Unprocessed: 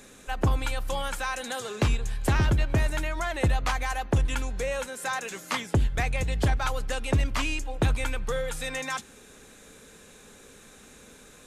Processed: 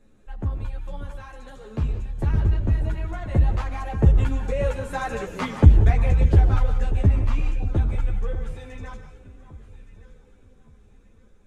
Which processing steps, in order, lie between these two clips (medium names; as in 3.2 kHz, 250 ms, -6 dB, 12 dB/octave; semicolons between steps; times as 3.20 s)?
Doppler pass-by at 5.19 s, 9 m/s, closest 7.6 m; tilt EQ -3.5 dB/octave; echo whose repeats swap between lows and highs 585 ms, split 1.2 kHz, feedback 55%, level -12 dB; gated-style reverb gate 210 ms rising, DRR 7.5 dB; three-phase chorus; trim +4.5 dB